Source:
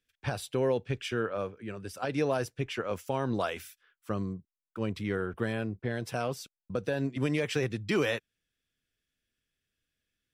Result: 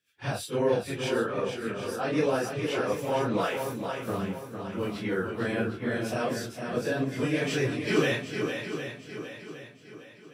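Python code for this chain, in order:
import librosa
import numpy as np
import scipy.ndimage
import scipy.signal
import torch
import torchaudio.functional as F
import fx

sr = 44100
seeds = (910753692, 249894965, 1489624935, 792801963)

y = fx.phase_scramble(x, sr, seeds[0], window_ms=100)
y = scipy.signal.sosfilt(scipy.signal.butter(2, 140.0, 'highpass', fs=sr, output='sos'), y)
y = fx.echo_swing(y, sr, ms=760, ratio=1.5, feedback_pct=39, wet_db=-6.5)
y = F.gain(torch.from_numpy(y), 3.0).numpy()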